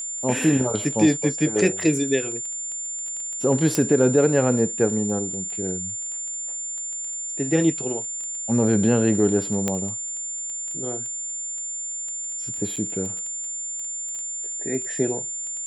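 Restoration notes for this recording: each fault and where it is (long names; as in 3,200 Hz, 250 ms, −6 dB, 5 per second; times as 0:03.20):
surface crackle 12 per second −30 dBFS
whistle 7,200 Hz −28 dBFS
0:03.75: click −7 dBFS
0:09.68: click −9 dBFS
0:12.76–0:12.77: drop-out 6.1 ms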